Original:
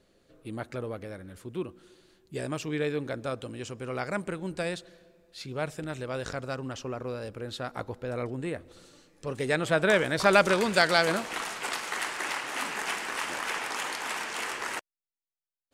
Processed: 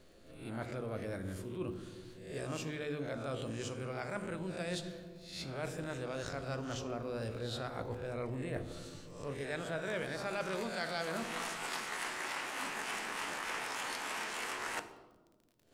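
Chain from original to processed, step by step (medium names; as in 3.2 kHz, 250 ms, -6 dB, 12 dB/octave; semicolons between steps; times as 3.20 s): reverse spectral sustain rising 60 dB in 0.42 s; bass shelf 230 Hz +4 dB; hum notches 50/100/150/200/250/300/350/400/450 Hz; reverse; compression 5:1, threshold -39 dBFS, peak gain reduction 22 dB; reverse; crackle 40 per s -54 dBFS; on a send: reverberation RT60 1.4 s, pre-delay 4 ms, DRR 9 dB; on the sum: trim +1 dB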